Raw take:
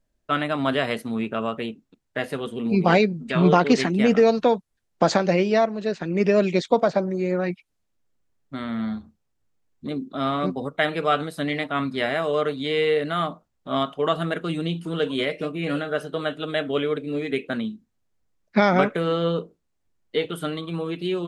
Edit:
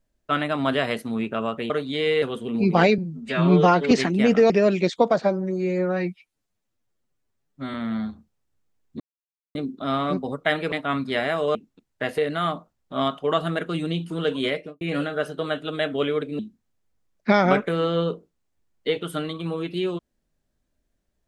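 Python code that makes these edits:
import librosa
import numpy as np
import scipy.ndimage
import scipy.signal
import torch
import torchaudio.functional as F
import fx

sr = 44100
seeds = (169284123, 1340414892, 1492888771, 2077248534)

y = fx.studio_fade_out(x, sr, start_s=15.25, length_s=0.31)
y = fx.edit(y, sr, fx.swap(start_s=1.7, length_s=0.63, other_s=12.41, other_length_s=0.52),
    fx.stretch_span(start_s=3.09, length_s=0.62, factor=1.5),
    fx.cut(start_s=4.3, length_s=1.92),
    fx.stretch_span(start_s=6.94, length_s=1.68, factor=1.5),
    fx.insert_silence(at_s=9.88, length_s=0.55),
    fx.cut(start_s=11.05, length_s=0.53),
    fx.cut(start_s=17.14, length_s=0.53), tone=tone)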